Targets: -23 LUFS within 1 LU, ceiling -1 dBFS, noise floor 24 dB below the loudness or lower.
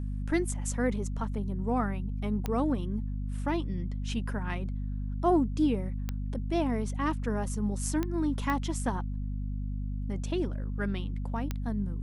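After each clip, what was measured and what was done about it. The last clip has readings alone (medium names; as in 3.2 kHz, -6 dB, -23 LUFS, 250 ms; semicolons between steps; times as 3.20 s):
clicks found 5; hum 50 Hz; highest harmonic 250 Hz; hum level -31 dBFS; loudness -32.0 LUFS; peak level -14.5 dBFS; loudness target -23.0 LUFS
-> de-click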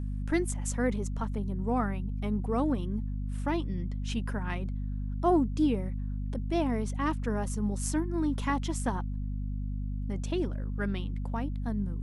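clicks found 0; hum 50 Hz; highest harmonic 250 Hz; hum level -31 dBFS
-> de-hum 50 Hz, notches 5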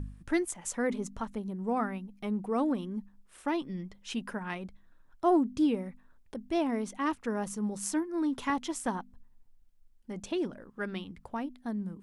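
hum not found; loudness -33.0 LUFS; peak level -15.5 dBFS; loudness target -23.0 LUFS
-> trim +10 dB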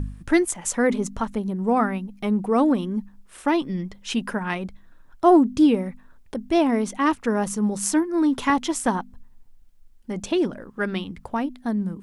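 loudness -23.0 LUFS; peak level -5.5 dBFS; noise floor -51 dBFS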